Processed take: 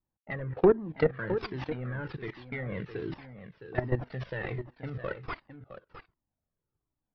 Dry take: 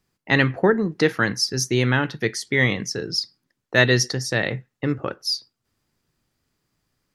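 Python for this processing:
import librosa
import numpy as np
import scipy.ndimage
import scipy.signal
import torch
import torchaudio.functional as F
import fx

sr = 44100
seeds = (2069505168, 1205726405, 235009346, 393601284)

p1 = fx.cvsd(x, sr, bps=32000)
p2 = fx.env_lowpass_down(p1, sr, base_hz=830.0, full_db=-15.5)
p3 = scipy.signal.sosfilt(scipy.signal.butter(4, 3800.0, 'lowpass', fs=sr, output='sos'), p2)
p4 = fx.env_lowpass(p3, sr, base_hz=850.0, full_db=-20.0)
p5 = fx.level_steps(p4, sr, step_db=18)
p6 = p5 + fx.echo_single(p5, sr, ms=662, db=-11.5, dry=0)
p7 = fx.comb_cascade(p6, sr, direction='falling', hz=1.3)
y = F.gain(torch.from_numpy(p7), 5.5).numpy()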